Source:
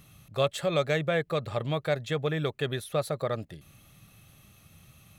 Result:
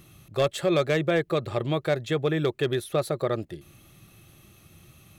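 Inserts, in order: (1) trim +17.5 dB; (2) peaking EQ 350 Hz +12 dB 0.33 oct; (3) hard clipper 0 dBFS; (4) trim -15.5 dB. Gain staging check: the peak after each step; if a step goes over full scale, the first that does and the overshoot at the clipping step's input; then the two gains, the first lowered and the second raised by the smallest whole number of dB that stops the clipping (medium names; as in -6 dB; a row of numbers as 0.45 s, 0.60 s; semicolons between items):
+4.5 dBFS, +6.0 dBFS, 0.0 dBFS, -15.5 dBFS; step 1, 6.0 dB; step 1 +11.5 dB, step 4 -9.5 dB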